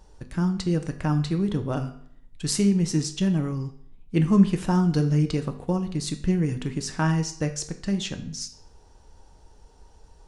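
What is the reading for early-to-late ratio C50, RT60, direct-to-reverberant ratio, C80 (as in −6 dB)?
12.0 dB, 0.60 s, 6.0 dB, 15.0 dB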